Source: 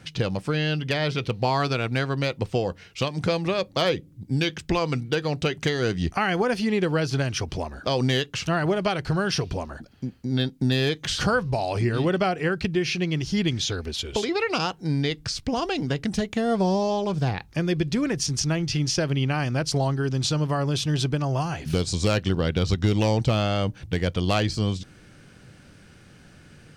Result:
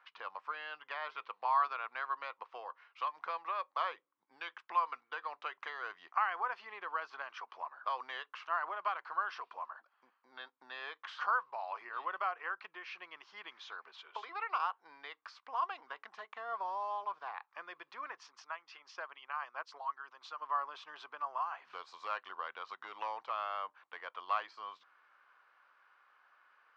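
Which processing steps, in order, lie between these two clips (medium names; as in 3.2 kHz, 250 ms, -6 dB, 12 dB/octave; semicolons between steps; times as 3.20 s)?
18.28–20.42 s: harmonic-percussive split harmonic -14 dB; ladder high-pass 990 Hz, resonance 70%; tape spacing loss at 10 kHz 44 dB; trim +4 dB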